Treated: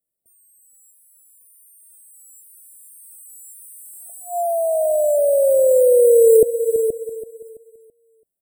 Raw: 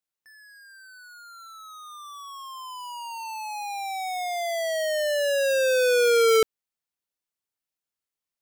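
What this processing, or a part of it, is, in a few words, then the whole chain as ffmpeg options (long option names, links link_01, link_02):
ducked delay: -filter_complex "[0:a]asettb=1/sr,asplit=3[link_01][link_02][link_03];[link_01]atrim=end=2.994[link_04];[link_02]atrim=start=2.99:end=4.1,asetpts=PTS-STARTPTS,afade=type=in:duration=0.004:curve=qsin,afade=type=out:start_time=1.106:duration=0.004:curve=qsin,highpass=frequency=200:poles=1[link_05];[link_03]atrim=start=4.096[link_06];[link_04][link_05]acrossfade=duration=0.004:curve1=hsin:curve2=qsin[link_07];[link_07][link_06]acrossfade=duration=0.004:curve1=qsin:curve2=hsin,afftfilt=real='re*(1-between(b*sr/4096,700,7600))':imag='im*(1-between(b*sr/4096,700,7600))':win_size=4096:overlap=0.75,asplit=3[link_08][link_09][link_10];[link_09]adelay=475,volume=-8dB[link_11];[link_10]apad=whole_len=392201[link_12];[link_11][link_12]sidechaincompress=threshold=-32dB:ratio=8:attack=16:release=328[link_13];[link_08][link_13]amix=inputs=2:normalize=0,aecho=1:1:332|664|996|1328:0.251|0.0879|0.0308|0.0108,volume=8.5dB"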